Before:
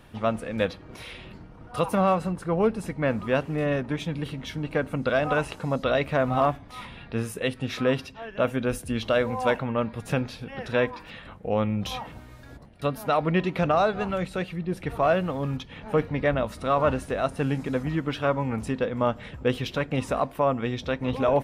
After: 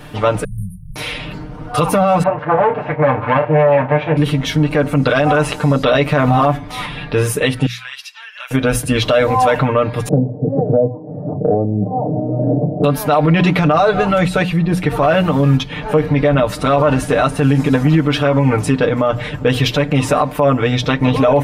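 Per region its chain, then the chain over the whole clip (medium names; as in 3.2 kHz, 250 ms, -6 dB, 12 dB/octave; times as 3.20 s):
0.44–0.96 s: brick-wall FIR band-stop 190–8600 Hz + comb 3.5 ms, depth 54% + three bands compressed up and down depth 40%
2.23–4.17 s: comb filter that takes the minimum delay 8.5 ms + cabinet simulation 110–2400 Hz, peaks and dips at 190 Hz -10 dB, 360 Hz -10 dB, 570 Hz +6 dB, 860 Hz +8 dB + doubling 32 ms -11 dB
7.66–8.51 s: Bessel high-pass 2.1 kHz, order 4 + compression 2:1, threshold -49 dBFS
10.08–12.84 s: Chebyshev band-pass 110–690 Hz, order 4 + three bands compressed up and down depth 100%
whole clip: hum notches 60/120/180 Hz; comb 6.7 ms, depth 89%; loudness maximiser +17.5 dB; trim -3.5 dB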